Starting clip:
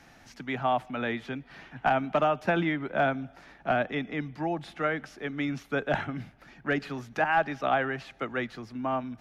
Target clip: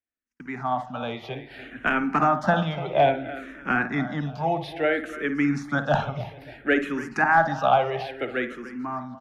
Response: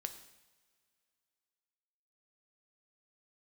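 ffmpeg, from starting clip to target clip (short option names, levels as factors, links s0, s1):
-filter_complex "[0:a]dynaudnorm=f=330:g=7:m=2.51,aecho=1:1:292|584|876:0.168|0.0554|0.0183,agate=range=0.00891:threshold=0.00562:ratio=16:detection=peak,asplit=2[s0][s1];[1:a]atrim=start_sample=2205,lowpass=2200,adelay=55[s2];[s1][s2]afir=irnorm=-1:irlink=0,volume=0.473[s3];[s0][s3]amix=inputs=2:normalize=0,asplit=2[s4][s5];[s5]afreqshift=-0.6[s6];[s4][s6]amix=inputs=2:normalize=1"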